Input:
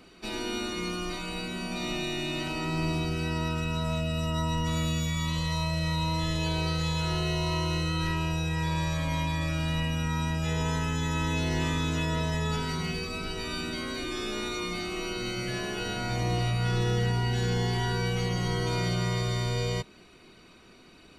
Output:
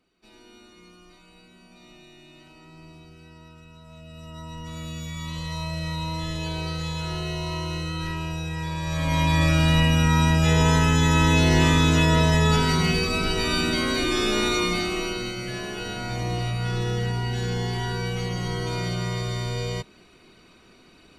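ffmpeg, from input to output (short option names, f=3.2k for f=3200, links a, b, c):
-af "volume=10dB,afade=t=in:st=3.86:d=0.89:silence=0.298538,afade=t=in:st=4.75:d=0.97:silence=0.473151,afade=t=in:st=8.82:d=0.59:silence=0.281838,afade=t=out:st=14.55:d=0.8:silence=0.334965"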